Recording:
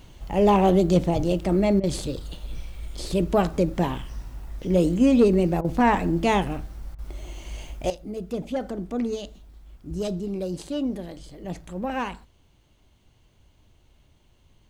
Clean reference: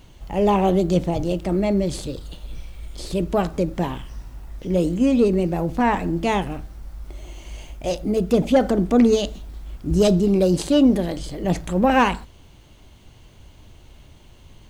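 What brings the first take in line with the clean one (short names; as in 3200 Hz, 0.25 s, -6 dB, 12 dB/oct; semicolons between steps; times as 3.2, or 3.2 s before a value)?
clip repair -10 dBFS; interpolate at 1.8/5.61/6.95, 34 ms; gain 0 dB, from 7.9 s +12 dB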